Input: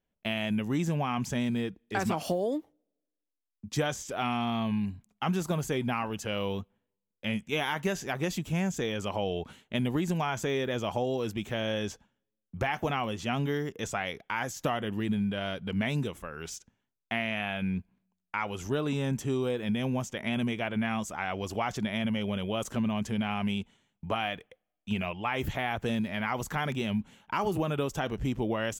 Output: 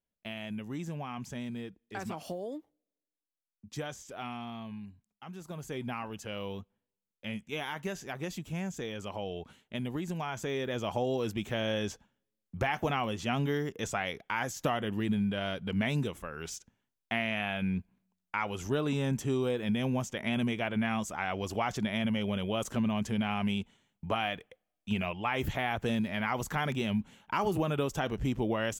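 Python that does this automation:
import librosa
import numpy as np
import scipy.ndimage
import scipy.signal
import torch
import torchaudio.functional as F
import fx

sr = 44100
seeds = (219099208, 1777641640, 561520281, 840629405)

y = fx.gain(x, sr, db=fx.line((4.23, -9.0), (5.27, -17.0), (5.81, -6.5), (10.12, -6.5), (11.11, -0.5)))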